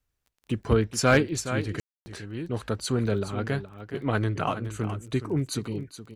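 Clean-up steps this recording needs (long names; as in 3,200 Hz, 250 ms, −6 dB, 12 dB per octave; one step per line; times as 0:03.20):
clipped peaks rebuilt −9.5 dBFS
click removal
ambience match 0:01.80–0:02.06
echo removal 419 ms −11.5 dB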